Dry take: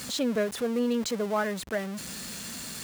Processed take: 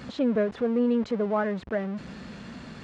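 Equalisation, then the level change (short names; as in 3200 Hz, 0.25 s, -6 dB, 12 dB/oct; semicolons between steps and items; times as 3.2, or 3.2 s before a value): tape spacing loss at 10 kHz 39 dB; +4.5 dB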